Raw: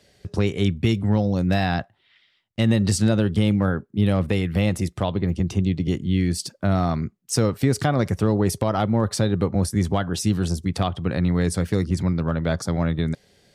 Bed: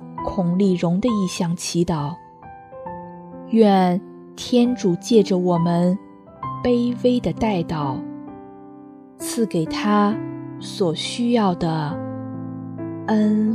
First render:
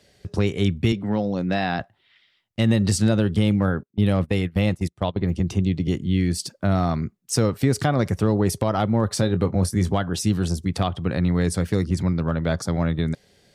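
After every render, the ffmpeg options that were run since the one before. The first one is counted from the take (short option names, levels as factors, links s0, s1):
-filter_complex "[0:a]asettb=1/sr,asplit=3[s0][s1][s2];[s0]atrim=end=0.924[s3];[s1]atrim=start=0.92:end=1.8,asetpts=PTS-STARTPTS,afade=t=in:d=0.004:c=qsin,afade=t=out:st=0.876:d=0.004:c=qsin,highpass=180,lowpass=4700[s4];[s2]atrim=start=1.796[s5];[s3][s4]acrossfade=d=0.004:c1=hsin:c2=qsin[s6];[s6][s5]acrossfade=d=0.004:c1=qsin:c2=hsin,asettb=1/sr,asplit=3[s7][s8][s9];[s7]atrim=end=3.834[s10];[s8]atrim=start=3.83:end=5.21,asetpts=PTS-STARTPTS,afade=t=in:d=0.004:c=qsin,afade=t=out:st=1.376:d=0.004:c=qsin,agate=range=0.1:threshold=0.0562:ratio=16:release=100:detection=peak[s11];[s9]atrim=start=5.206[s12];[s10][s11]acrossfade=d=0.004:c1=hsin:c2=qsin[s13];[s13][s12]acrossfade=d=0.004:c1=qsin:c2=hsin,asettb=1/sr,asplit=3[s14][s15][s16];[s14]atrim=end=9.144[s17];[s15]atrim=start=9.14:end=9.91,asetpts=PTS-STARTPTS,afade=t=in:d=0.004:c=qsin,afade=t=out:st=0.766:d=0.004:c=qsin,asplit=2[s18][s19];[s19]adelay=22,volume=0.266[s20];[s18][s20]amix=inputs=2:normalize=0,atrim=end_sample=33957[s21];[s16]atrim=start=9.906[s22];[s17][s21]acrossfade=d=0.004:c1=hsin:c2=qsin[s23];[s23][s22]acrossfade=d=0.004:c1=qsin:c2=hsin"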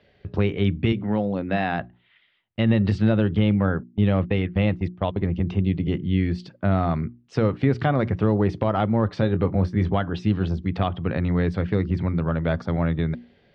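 -af "lowpass=f=3200:w=0.5412,lowpass=f=3200:w=1.3066,bandreject=f=60:t=h:w=6,bandreject=f=120:t=h:w=6,bandreject=f=180:t=h:w=6,bandreject=f=240:t=h:w=6,bandreject=f=300:t=h:w=6,bandreject=f=360:t=h:w=6"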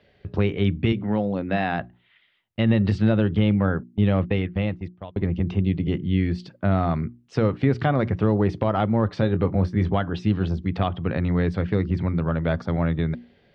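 -filter_complex "[0:a]asplit=2[s0][s1];[s0]atrim=end=5.16,asetpts=PTS-STARTPTS,afade=t=out:st=4.31:d=0.85:silence=0.112202[s2];[s1]atrim=start=5.16,asetpts=PTS-STARTPTS,afade=t=in:d=0.004:c=hsin:silence=0.112202[s3];[s2][s3]concat=n=2:v=0:a=1"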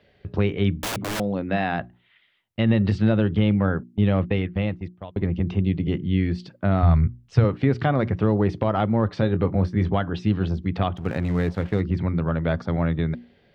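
-filter_complex "[0:a]asettb=1/sr,asplit=3[s0][s1][s2];[s0]atrim=end=0.804[s3];[s1]atrim=start=0.8:end=1.2,asetpts=PTS-STARTPTS,afade=t=in:d=0.004:c=qsin,afade=t=out:st=0.396:d=0.004:c=qsin,aeval=exprs='(mod(14.1*val(0)+1,2)-1)/14.1':c=same[s4];[s2]atrim=start=1.196[s5];[s3][s4]acrossfade=d=0.004:c1=hsin:c2=qsin[s6];[s6][s5]acrossfade=d=0.004:c1=qsin:c2=hsin,asplit=3[s7][s8][s9];[s7]afade=t=out:st=6.82:d=0.02[s10];[s8]asubboost=boost=11.5:cutoff=81,afade=t=in:st=6.82:d=0.02,afade=t=out:st=7.43:d=0.02[s11];[s9]afade=t=in:st=7.43:d=0.02[s12];[s10][s11][s12]amix=inputs=3:normalize=0,asettb=1/sr,asplit=3[s13][s14][s15];[s13]atrim=end=10.974[s16];[s14]atrim=start=10.97:end=11.81,asetpts=PTS-STARTPTS,afade=t=in:d=0.004:c=qsin,afade=t=out:st=0.836:d=0.004:c=qsin,aeval=exprs='sgn(val(0))*max(abs(val(0))-0.0133,0)':c=same[s17];[s15]atrim=start=11.806[s18];[s16][s17]acrossfade=d=0.004:c1=hsin:c2=qsin[s19];[s19][s18]acrossfade=d=0.004:c1=qsin:c2=hsin"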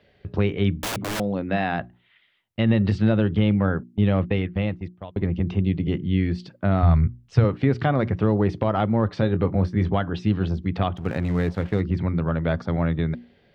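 -af anull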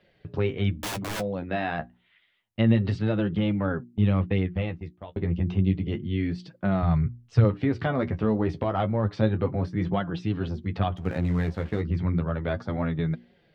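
-af "flanger=delay=5.4:depth=8.3:regen=28:speed=0.3:shape=triangular"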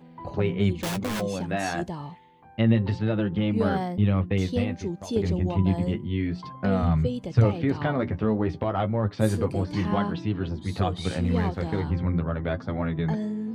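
-filter_complex "[1:a]volume=0.237[s0];[0:a][s0]amix=inputs=2:normalize=0"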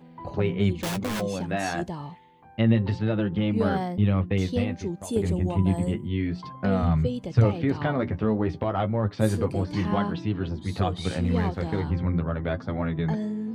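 -filter_complex "[0:a]asettb=1/sr,asplit=3[s0][s1][s2];[s0]atrim=end=5.014[s3];[s1]atrim=start=5.01:end=6.08,asetpts=PTS-STARTPTS,afade=t=in:d=0.004:c=qsin,afade=t=out:st=1.066:d=0.004:c=qsin,highshelf=f=6700:t=q:w=3:g=7.5[s4];[s2]atrim=start=6.076[s5];[s3][s4]acrossfade=d=0.004:c1=hsin:c2=qsin[s6];[s6][s5]acrossfade=d=0.004:c1=qsin:c2=hsin"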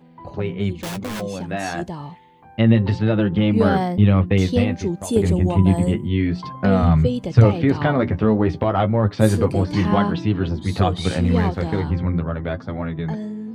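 -af "dynaudnorm=f=420:g=11:m=3.76"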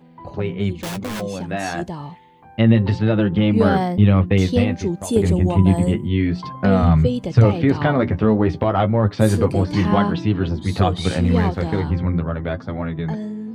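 -af "volume=1.12,alimiter=limit=0.708:level=0:latency=1"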